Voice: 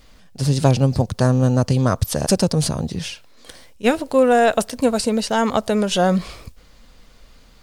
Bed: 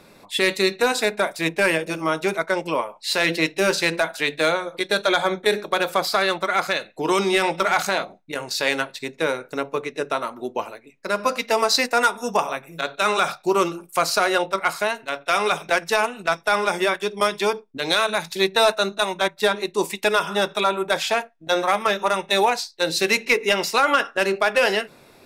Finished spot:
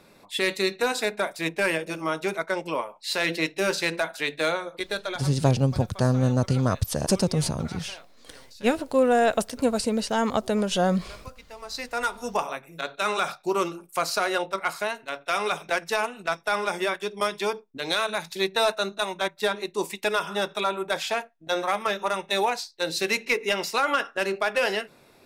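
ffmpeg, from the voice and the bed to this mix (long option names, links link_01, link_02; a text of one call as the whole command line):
ffmpeg -i stem1.wav -i stem2.wav -filter_complex "[0:a]adelay=4800,volume=-5.5dB[link_01];[1:a]volume=13dB,afade=type=out:start_time=4.71:duration=0.61:silence=0.11885,afade=type=in:start_time=11.6:duration=0.66:silence=0.125893[link_02];[link_01][link_02]amix=inputs=2:normalize=0" out.wav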